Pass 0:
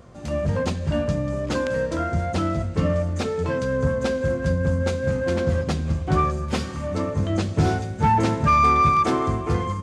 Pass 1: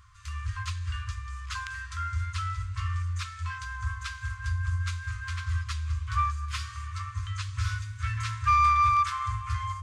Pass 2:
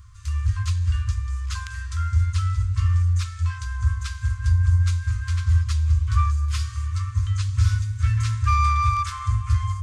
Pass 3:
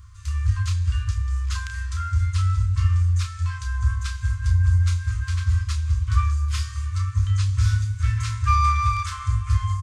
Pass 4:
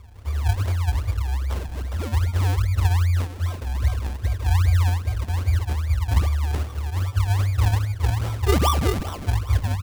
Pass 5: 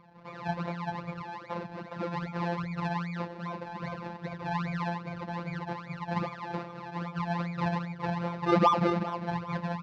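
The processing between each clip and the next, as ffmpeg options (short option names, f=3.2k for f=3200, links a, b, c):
-af "afftfilt=real='re*(1-between(b*sr/4096,110,1000))':imag='im*(1-between(b*sr/4096,110,1000))':win_size=4096:overlap=0.75,bandreject=f=50:t=h:w=6,bandreject=f=100:t=h:w=6,volume=-4dB"
-af "bass=f=250:g=13,treble=f=4k:g=8,volume=-1.5dB"
-filter_complex "[0:a]asplit=2[a][b];[b]adelay=31,volume=-7dB[c];[a][c]amix=inputs=2:normalize=0"
-af "acrusher=samples=37:mix=1:aa=0.000001:lfo=1:lforange=37:lforate=2.5"
-af "afftfilt=real='hypot(re,im)*cos(PI*b)':imag='0':win_size=1024:overlap=0.75,highpass=130,equalizer=f=200:t=q:w=4:g=8,equalizer=f=550:t=q:w=4:g=6,equalizer=f=940:t=q:w=4:g=8,equalizer=f=3.2k:t=q:w=4:g=-9,lowpass=f=4k:w=0.5412,lowpass=f=4k:w=1.3066"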